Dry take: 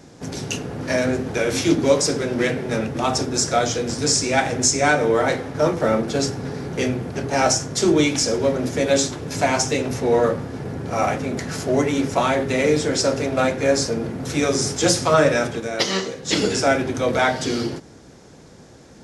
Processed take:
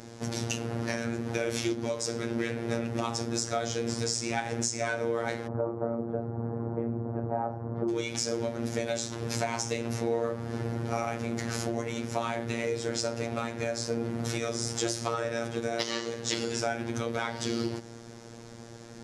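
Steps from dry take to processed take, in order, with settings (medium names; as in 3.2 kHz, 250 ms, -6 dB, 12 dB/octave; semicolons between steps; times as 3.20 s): 5.47–7.89 s: low-pass 1.1 kHz 24 dB/octave; compression 6:1, threshold -28 dBFS, peak gain reduction 16.5 dB; robot voice 116 Hz; trim +1.5 dB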